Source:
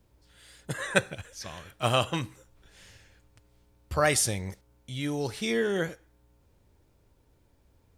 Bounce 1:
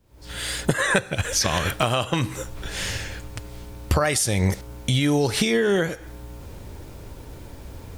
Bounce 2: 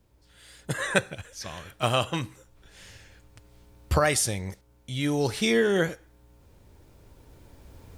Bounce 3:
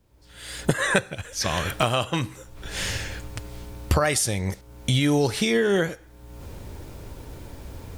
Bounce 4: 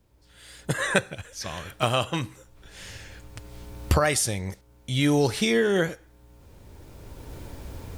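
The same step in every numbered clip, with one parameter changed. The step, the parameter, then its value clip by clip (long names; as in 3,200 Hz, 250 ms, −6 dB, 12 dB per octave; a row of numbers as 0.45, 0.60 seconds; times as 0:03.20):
camcorder AGC, rising by: 80, 5.3, 33, 13 dB per second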